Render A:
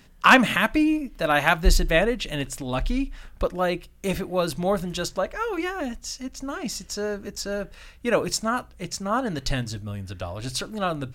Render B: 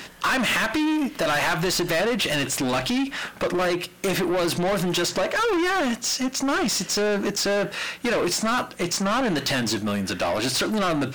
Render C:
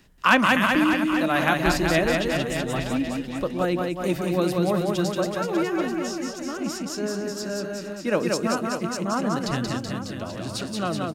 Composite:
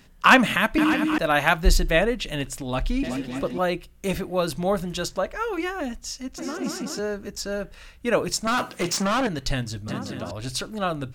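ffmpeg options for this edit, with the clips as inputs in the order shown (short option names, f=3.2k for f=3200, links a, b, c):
-filter_complex "[2:a]asplit=4[a][b][c][d];[0:a]asplit=6[e][f][g][h][i][j];[e]atrim=end=0.782[k];[a]atrim=start=0.778:end=1.182[l];[f]atrim=start=1.178:end=3.032[m];[b]atrim=start=3.028:end=3.582[n];[g]atrim=start=3.578:end=6.382[o];[c]atrim=start=6.378:end=6.992[p];[h]atrim=start=6.988:end=8.472[q];[1:a]atrim=start=8.468:end=9.272[r];[i]atrim=start=9.268:end=9.882[s];[d]atrim=start=9.878:end=10.312[t];[j]atrim=start=10.308[u];[k][l]acrossfade=d=0.004:c1=hsin:c2=hsin[v];[v][m]acrossfade=d=0.004:c1=hsin:c2=hsin[w];[w][n]acrossfade=d=0.004:c1=hsin:c2=hsin[x];[x][o]acrossfade=d=0.004:c1=hsin:c2=hsin[y];[y][p]acrossfade=d=0.004:c1=hsin:c2=hsin[z];[z][q]acrossfade=d=0.004:c1=hsin:c2=hsin[aa];[aa][r]acrossfade=d=0.004:c1=hsin:c2=hsin[ab];[ab][s]acrossfade=d=0.004:c1=hsin:c2=hsin[ac];[ac][t]acrossfade=d=0.004:c1=hsin:c2=hsin[ad];[ad][u]acrossfade=d=0.004:c1=hsin:c2=hsin"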